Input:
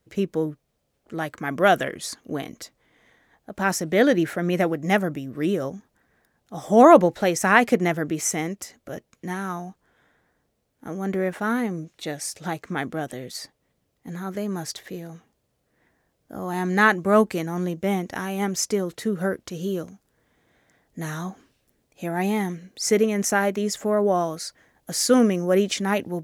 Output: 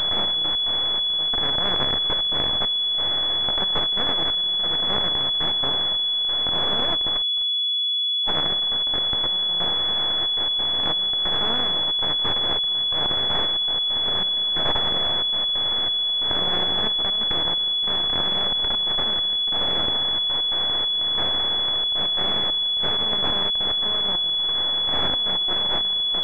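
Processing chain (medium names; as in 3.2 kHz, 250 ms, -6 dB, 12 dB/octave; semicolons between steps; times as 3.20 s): spectral levelling over time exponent 0.2; differentiator; gain riding 2 s; 7.22–8.28 s: gate -17 dBFS, range -49 dB; half-wave rectifier; trance gate "xxx.x.xxx...xxx" 136 bpm -12 dB; class-D stage that switches slowly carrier 3.4 kHz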